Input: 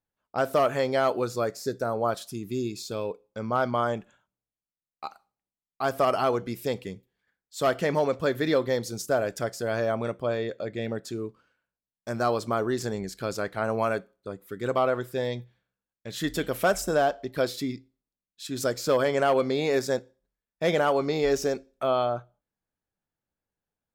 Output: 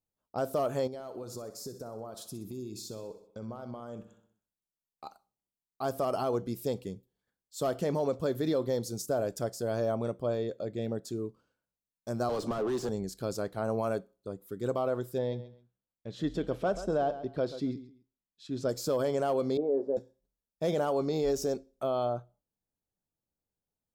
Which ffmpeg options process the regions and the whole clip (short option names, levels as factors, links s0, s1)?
-filter_complex "[0:a]asettb=1/sr,asplit=3[s0][s1][s2];[s0]atrim=end=0.874[s3];[s1]atrim=start=0.87:end=5.06,asetpts=PTS-STARTPTS,afade=t=in:d=0.004:c=qsin,afade=t=out:st=4.186:d=0.004:c=qsin,acompressor=threshold=0.02:ratio=12:attack=3.2:release=140:knee=1:detection=peak,aecho=1:1:63|126|189|252|315|378:0.237|0.13|0.0717|0.0395|0.0217|0.0119,atrim=end_sample=184779[s4];[s2]atrim=start=5.056[s5];[s3][s4]acrossfade=d=0.004:c1=hsin:c2=qsin[s6];[s6][s5]acrossfade=d=0.004:c1=qsin:c2=hsin,asettb=1/sr,asplit=3[s7][s8][s9];[s7]atrim=end=12.294[s10];[s8]atrim=start=12.29:end=12.89,asetpts=PTS-STARTPTS,afade=t=in:d=0.004:c=qsin,afade=t=out:st=0.596:d=0.004:c=qsin,acrossover=split=140|360|1400[s11][s12][s13][s14];[s11]acompressor=threshold=0.00316:ratio=3[s15];[s12]acompressor=threshold=0.0126:ratio=3[s16];[s13]acompressor=threshold=0.01:ratio=3[s17];[s14]acompressor=threshold=0.00891:ratio=3[s18];[s15][s16][s17][s18]amix=inputs=4:normalize=0,asplit=2[s19][s20];[s20]highpass=f=720:p=1,volume=25.1,asoftclip=type=tanh:threshold=0.106[s21];[s19][s21]amix=inputs=2:normalize=0,lowpass=f=1300:p=1,volume=0.501[s22];[s9]atrim=start=12.886[s23];[s10][s22]acrossfade=d=0.004:c1=hsin:c2=qsin[s24];[s24][s23]acrossfade=d=0.004:c1=qsin:c2=hsin,asettb=1/sr,asplit=3[s25][s26][s27];[s25]atrim=end=15.184[s28];[s26]atrim=start=15.18:end=18.69,asetpts=PTS-STARTPTS,afade=t=in:d=0.004:c=qsin,afade=t=out:st=3.506:d=0.004:c=qsin,lowpass=3300,aecho=1:1:133|266:0.178|0.0391,atrim=end_sample=154791[s29];[s27]atrim=start=18.686[s30];[s28][s29]acrossfade=d=0.004:c1=hsin:c2=qsin[s31];[s31][s30]acrossfade=d=0.004:c1=qsin:c2=hsin,asettb=1/sr,asplit=3[s32][s33][s34];[s32]atrim=end=19.574[s35];[s33]atrim=start=19.57:end=19.97,asetpts=PTS-STARTPTS,afade=t=in:d=0.004:c=qsin,afade=t=out:st=0.396:d=0.004:c=qsin,aeval=exprs='val(0)+0.5*0.02*sgn(val(0))':c=same,asuperpass=centerf=430:order=4:qfactor=1.1,asplit=2[s36][s37];[s37]adelay=14,volume=0.422[s38];[s36][s38]amix=inputs=2:normalize=0,atrim=end_sample=17640[s39];[s34]atrim=start=19.966[s40];[s35][s39]acrossfade=d=0.004:c1=hsin:c2=qsin[s41];[s41][s40]acrossfade=d=0.004:c1=qsin:c2=hsin,equalizer=f=2000:t=o:w=1.5:g=-13.5,alimiter=limit=0.106:level=0:latency=1:release=47,volume=0.841"